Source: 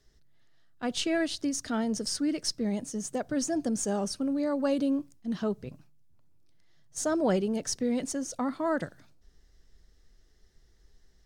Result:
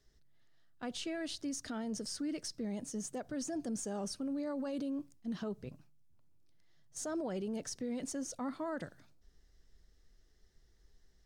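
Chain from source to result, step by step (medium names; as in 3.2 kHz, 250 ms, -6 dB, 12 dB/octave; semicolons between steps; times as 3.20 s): peak limiter -26.5 dBFS, peak gain reduction 11 dB; trim -5 dB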